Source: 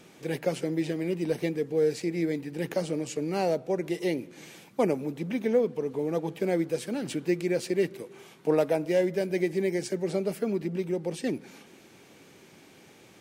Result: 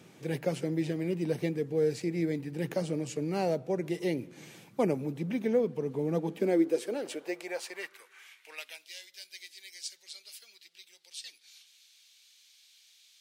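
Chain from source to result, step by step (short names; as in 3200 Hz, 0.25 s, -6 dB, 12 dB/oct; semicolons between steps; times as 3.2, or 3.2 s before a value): high-pass sweep 110 Hz -> 3900 Hz, 5.74–8.95; gain -3.5 dB; AAC 128 kbps 48000 Hz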